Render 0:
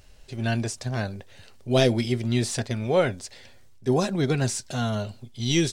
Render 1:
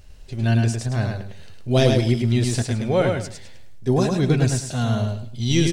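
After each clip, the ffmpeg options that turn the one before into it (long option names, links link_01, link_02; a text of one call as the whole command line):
ffmpeg -i in.wav -af "lowshelf=frequency=170:gain=8.5,aecho=1:1:105|210|315:0.631|0.158|0.0394" out.wav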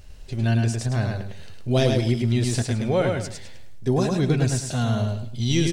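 ffmpeg -i in.wav -af "acompressor=threshold=-25dB:ratio=1.5,volume=1.5dB" out.wav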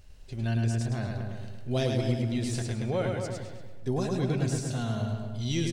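ffmpeg -i in.wav -filter_complex "[0:a]asplit=2[link_01][link_02];[link_02]adelay=236,lowpass=frequency=1500:poles=1,volume=-5dB,asplit=2[link_03][link_04];[link_04]adelay=236,lowpass=frequency=1500:poles=1,volume=0.32,asplit=2[link_05][link_06];[link_06]adelay=236,lowpass=frequency=1500:poles=1,volume=0.32,asplit=2[link_07][link_08];[link_08]adelay=236,lowpass=frequency=1500:poles=1,volume=0.32[link_09];[link_01][link_03][link_05][link_07][link_09]amix=inputs=5:normalize=0,volume=-8dB" out.wav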